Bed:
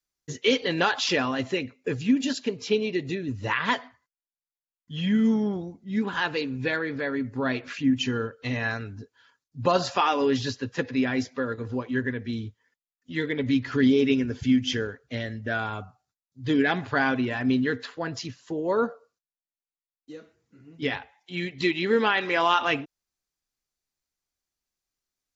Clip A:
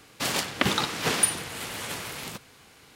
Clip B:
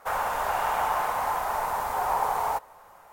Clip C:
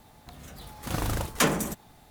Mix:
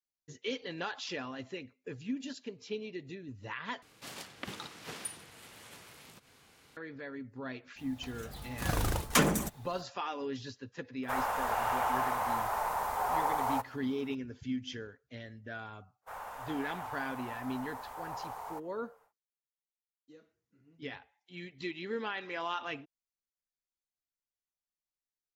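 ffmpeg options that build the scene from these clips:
-filter_complex "[2:a]asplit=2[a][b];[0:a]volume=-14.5dB[c];[1:a]acompressor=mode=upward:threshold=-32dB:ratio=2.5:attack=3.2:release=140:knee=2.83:detection=peak[d];[3:a]aphaser=in_gain=1:out_gain=1:delay=2.8:decay=0.27:speed=1.3:type=triangular[e];[c]asplit=2[f][g];[f]atrim=end=3.824[h];[d]atrim=end=2.95,asetpts=PTS-STARTPTS,volume=-18dB[i];[g]atrim=start=6.766[j];[e]atrim=end=2.1,asetpts=PTS-STARTPTS,volume=-2.5dB,afade=t=in:d=0.05,afade=t=out:st=2.05:d=0.05,adelay=7750[k];[a]atrim=end=3.12,asetpts=PTS-STARTPTS,volume=-5dB,afade=t=in:d=0.004:c=hsin,afade=t=out:st=3.116:d=0.004:c=hsin,adelay=11030[l];[b]atrim=end=3.12,asetpts=PTS-STARTPTS,volume=-16dB,afade=t=in:d=0.1,afade=t=out:st=3.02:d=0.1,adelay=16010[m];[h][i]acrossfade=d=0.004:c1=hsin:c2=hsin[n];[n][j]acrossfade=d=0.004:c1=hsin:c2=hsin[o];[o][k][l][m]amix=inputs=4:normalize=0"

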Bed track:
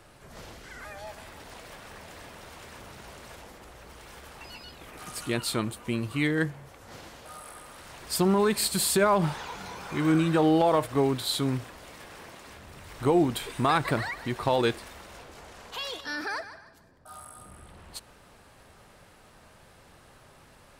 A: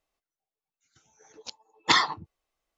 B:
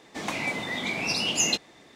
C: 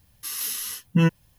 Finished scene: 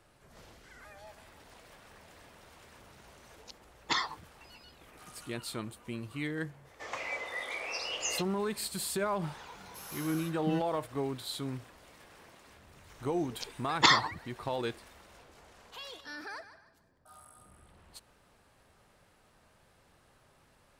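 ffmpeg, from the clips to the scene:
-filter_complex "[1:a]asplit=2[a][b];[0:a]volume=-10dB[c];[2:a]highpass=f=420:w=0.5412,highpass=f=420:w=1.3066,equalizer=f=520:t=q:w=4:g=8,equalizer=f=1.2k:t=q:w=4:g=7,equalizer=f=1.9k:t=q:w=4:g=5,equalizer=f=3.9k:t=q:w=4:g=-5,lowpass=f=7.4k:w=0.5412,lowpass=f=7.4k:w=1.3066[d];[a]atrim=end=2.77,asetpts=PTS-STARTPTS,volume=-10dB,afade=t=in:d=0.004:c=hsin,afade=t=out:st=2.766:d=0.004:c=hsin,adelay=2010[e];[d]atrim=end=1.95,asetpts=PTS-STARTPTS,volume=-9.5dB,afade=t=in:d=0.004:c=hsin,afade=t=out:st=1.946:d=0.004:c=hsin,adelay=6650[f];[3:a]atrim=end=1.38,asetpts=PTS-STARTPTS,volume=-16.5dB,afade=t=in:d=0.004:c=hsin,afade=t=out:st=1.376:d=0.004:c=hsin,adelay=9510[g];[b]atrim=end=2.77,asetpts=PTS-STARTPTS,volume=-1.5dB,afade=t=in:d=0.004:c=hsin,afade=t=out:st=2.766:d=0.004:c=hsin,adelay=11940[h];[c][e][f][g][h]amix=inputs=5:normalize=0"

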